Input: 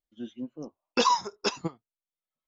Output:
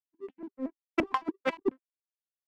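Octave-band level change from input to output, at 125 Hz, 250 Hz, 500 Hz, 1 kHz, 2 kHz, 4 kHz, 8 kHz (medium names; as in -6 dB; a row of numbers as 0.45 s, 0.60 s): -10.0 dB, +1.0 dB, -1.0 dB, -8.0 dB, -1.5 dB, -15.0 dB, no reading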